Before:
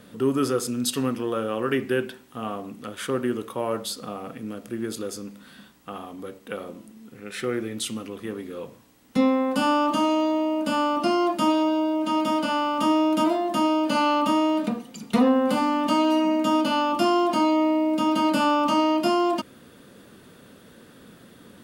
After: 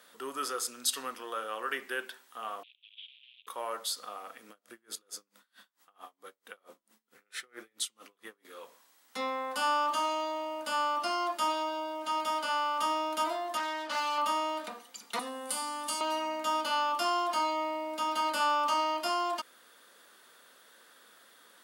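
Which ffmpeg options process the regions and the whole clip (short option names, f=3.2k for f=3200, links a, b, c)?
-filter_complex "[0:a]asettb=1/sr,asplit=3[a][b][c];[a]atrim=end=2.634[d];[b]atrim=start=2.63:end=3.47,asetpts=PTS-STARTPTS,afade=t=in:d=0.004:c=qsin,afade=t=out:st=0.836:d=0.004:c=qsin,acompressor=threshold=-33dB:ratio=4:attack=3.2:release=140:knee=1:detection=peak,acrusher=bits=7:dc=4:mix=0:aa=0.000001,asuperpass=centerf=3000:order=8:qfactor=2.6[e];[c]atrim=start=3.466[f];[d][e]acrossfade=d=0.004:c1=hsin:c2=qsin[g];[g][f]acrossfade=d=0.004:c1=qsin:c2=hsin,asettb=1/sr,asplit=3[h][i][j];[h]atrim=end=4.494[k];[i]atrim=start=4.49:end=8.45,asetpts=PTS-STARTPTS,afade=t=in:d=0.004:c=qsin,afade=t=out:st=3.956:d=0.004:c=qsin,lowshelf=f=200:g=9,aeval=exprs='val(0)*pow(10,-32*(0.5-0.5*cos(2*PI*4.5*n/s))/20)':c=same[l];[j]atrim=start=8.446[m];[k][l]acrossfade=d=0.004:c1=hsin:c2=qsin[n];[n][m]acrossfade=d=0.004:c1=qsin:c2=hsin,asettb=1/sr,asplit=3[o][p][q];[o]atrim=end=13.574[r];[p]atrim=start=13.57:end=14.18,asetpts=PTS-STARTPTS,afade=t=in:d=0.004:c=qsin,afade=t=out:st=0.606:d=0.004:c=qsin,lowpass=5.9k,asoftclip=type=hard:threshold=-22.5dB[s];[q]atrim=start=14.176[t];[r][s]acrossfade=d=0.004:c1=hsin:c2=qsin[u];[u][t]acrossfade=d=0.004:c1=qsin:c2=hsin,asettb=1/sr,asplit=3[v][w][x];[v]atrim=end=15.194[y];[w]atrim=start=15.19:end=16.01,asetpts=PTS-STARTPTS,afade=t=in:d=0.004:c=qsin,afade=t=out:st=0.816:d=0.004:c=qsin,equalizer=f=9.4k:t=o:w=0.62:g=14.5,acrossover=split=270|3000[z][aa][ab];[aa]acompressor=threshold=-45dB:ratio=1.5:attack=3.2:release=140:knee=2.83:detection=peak[ac];[z][ac][ab]amix=inputs=3:normalize=0,asplit=2[ad][ae];[ae]adelay=34,volume=-11dB[af];[ad][af]amix=inputs=2:normalize=0,atrim=end_sample=36162[ag];[x]atrim=start=16.006[ah];[y][ag]acrossfade=d=0.004:c1=hsin:c2=qsin[ai];[ai][ah]acrossfade=d=0.004:c1=qsin:c2=hsin,highpass=940,equalizer=f=2.6k:w=3.3:g=-5,volume=-2dB"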